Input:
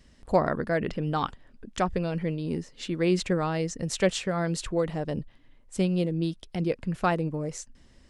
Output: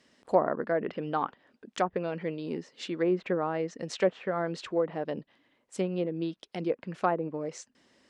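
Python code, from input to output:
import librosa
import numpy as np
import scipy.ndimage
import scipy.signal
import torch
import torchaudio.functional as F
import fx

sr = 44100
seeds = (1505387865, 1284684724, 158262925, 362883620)

y = scipy.signal.sosfilt(scipy.signal.butter(2, 290.0, 'highpass', fs=sr, output='sos'), x)
y = fx.env_lowpass_down(y, sr, base_hz=1200.0, full_db=-23.5)
y = fx.high_shelf(y, sr, hz=9100.0, db=-10.0)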